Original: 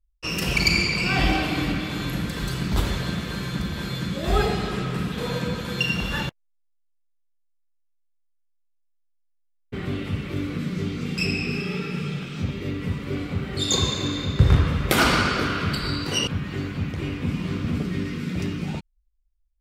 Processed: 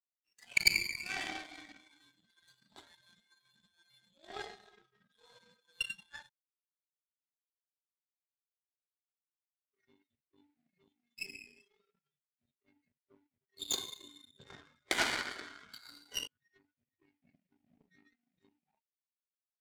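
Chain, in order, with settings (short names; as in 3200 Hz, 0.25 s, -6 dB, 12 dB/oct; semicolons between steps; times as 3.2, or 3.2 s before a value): speaker cabinet 450–8400 Hz, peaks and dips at 510 Hz -8 dB, 1200 Hz -10 dB, 1900 Hz +6 dB; spectral noise reduction 23 dB; power-law curve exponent 2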